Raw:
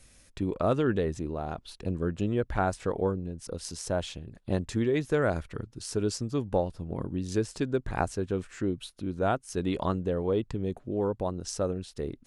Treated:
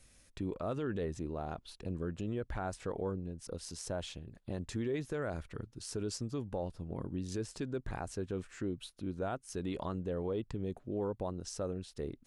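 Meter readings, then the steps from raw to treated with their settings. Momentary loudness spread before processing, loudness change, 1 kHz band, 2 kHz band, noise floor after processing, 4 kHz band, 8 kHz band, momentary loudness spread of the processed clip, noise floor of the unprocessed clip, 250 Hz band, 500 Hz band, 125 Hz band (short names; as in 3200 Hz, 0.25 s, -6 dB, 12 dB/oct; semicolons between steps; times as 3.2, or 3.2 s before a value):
9 LU, -8.5 dB, -10.5 dB, -10.0 dB, -65 dBFS, -6.5 dB, -6.0 dB, 7 LU, -60 dBFS, -8.0 dB, -9.0 dB, -8.0 dB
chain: limiter -22 dBFS, peak gain reduction 9.5 dB; gain -5.5 dB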